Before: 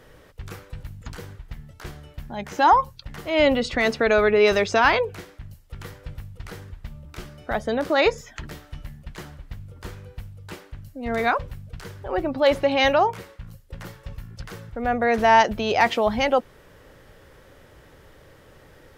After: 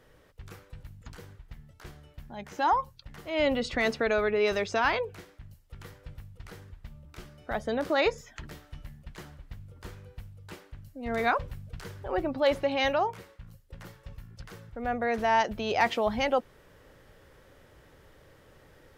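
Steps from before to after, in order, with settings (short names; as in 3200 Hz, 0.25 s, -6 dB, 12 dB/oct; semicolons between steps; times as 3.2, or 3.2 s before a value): vocal rider within 5 dB 0.5 s; gain -6 dB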